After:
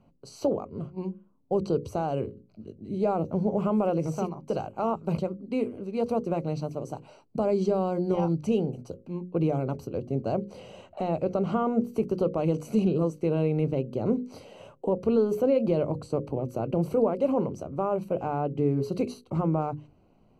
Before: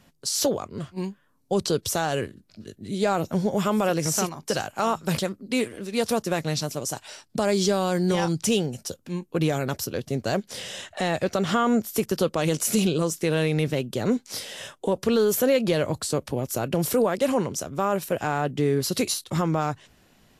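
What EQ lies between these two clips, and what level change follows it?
moving average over 25 samples
mains-hum notches 50/100/150/200/250 Hz
mains-hum notches 60/120/180/240/300/360/420/480/540 Hz
0.0 dB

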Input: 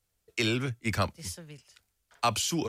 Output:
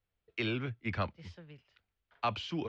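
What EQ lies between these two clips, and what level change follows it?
low-pass filter 3,500 Hz 24 dB per octave
−5.5 dB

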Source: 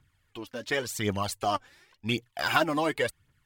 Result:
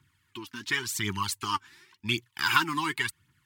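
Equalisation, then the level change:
elliptic band-stop filter 380–910 Hz, stop band 40 dB
dynamic equaliser 270 Hz, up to −7 dB, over −45 dBFS, Q 0.87
high-pass filter 110 Hz 12 dB per octave
+3.5 dB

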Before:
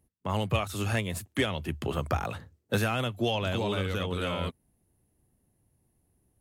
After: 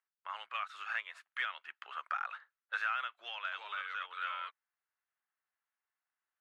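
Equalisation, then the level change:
four-pole ladder high-pass 1,200 Hz, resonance 55%
low-pass filter 2,800 Hz 12 dB per octave
+3.0 dB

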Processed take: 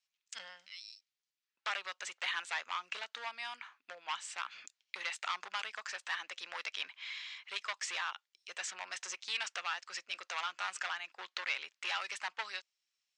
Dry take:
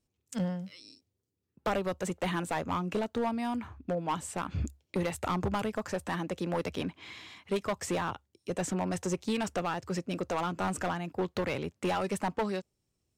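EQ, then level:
flat-topped band-pass 3,700 Hz, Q 0.51
high-frequency loss of the air 150 metres
spectral tilt +3.5 dB per octave
+1.5 dB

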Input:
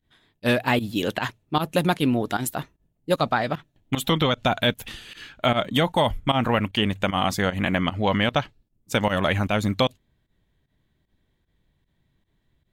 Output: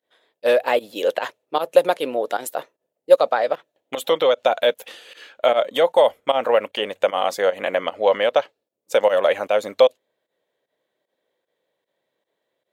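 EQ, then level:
high-pass with resonance 520 Hz, resonance Q 4.9
−2.0 dB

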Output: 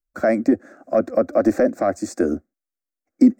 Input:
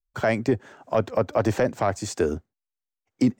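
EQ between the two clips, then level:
parametric band 360 Hz +12.5 dB 1.4 octaves
phaser with its sweep stopped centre 620 Hz, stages 8
0.0 dB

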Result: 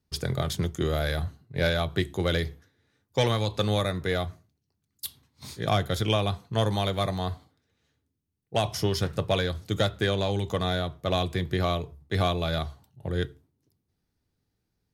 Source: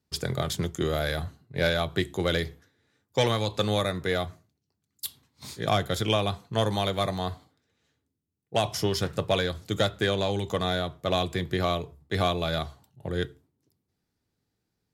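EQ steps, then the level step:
low-shelf EQ 73 Hz +11.5 dB
notch filter 7,400 Hz, Q 13
−1.0 dB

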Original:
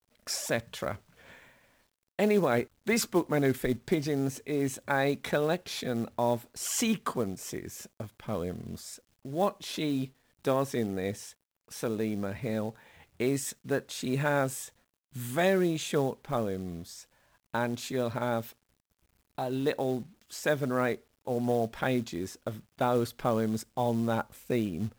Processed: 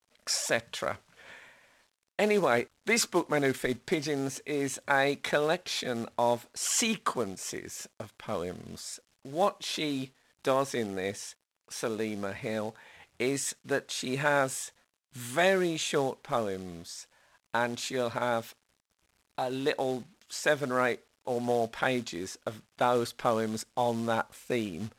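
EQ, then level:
low-pass filter 9,800 Hz 12 dB per octave
low-shelf EQ 370 Hz −11.5 dB
+4.5 dB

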